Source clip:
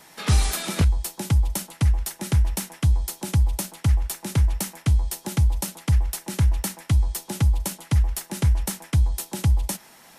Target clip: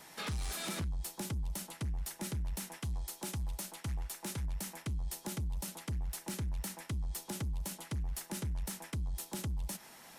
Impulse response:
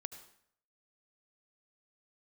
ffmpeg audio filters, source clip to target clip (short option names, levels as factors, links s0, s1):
-filter_complex "[0:a]asplit=3[s0][s1][s2];[s0]afade=t=out:st=2.77:d=0.02[s3];[s1]equalizer=f=80:t=o:w=2.8:g=-8,afade=t=in:st=2.77:d=0.02,afade=t=out:st=4.44:d=0.02[s4];[s2]afade=t=in:st=4.44:d=0.02[s5];[s3][s4][s5]amix=inputs=3:normalize=0,alimiter=limit=0.0944:level=0:latency=1:release=149,asoftclip=type=tanh:threshold=0.0398,volume=0.596"